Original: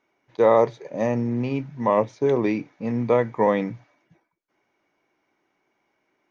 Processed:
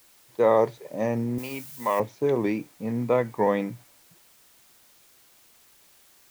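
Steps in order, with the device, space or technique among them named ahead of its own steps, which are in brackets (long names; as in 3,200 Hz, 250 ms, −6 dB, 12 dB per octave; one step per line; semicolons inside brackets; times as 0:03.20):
plain cassette with noise reduction switched in (one half of a high-frequency compander decoder only; tape wow and flutter; white noise bed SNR 30 dB)
0:01.38–0:02.00: spectral tilt +4 dB per octave
level −3 dB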